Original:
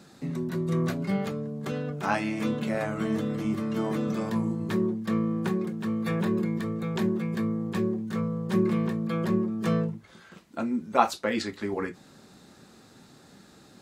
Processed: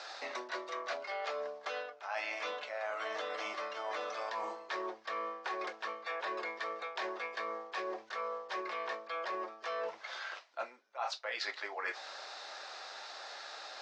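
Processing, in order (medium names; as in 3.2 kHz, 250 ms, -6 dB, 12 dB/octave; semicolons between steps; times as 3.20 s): elliptic band-pass 630–5500 Hz, stop band 50 dB; reverse; compression 16:1, threshold -48 dBFS, peak gain reduction 32.5 dB; reverse; trim +12.5 dB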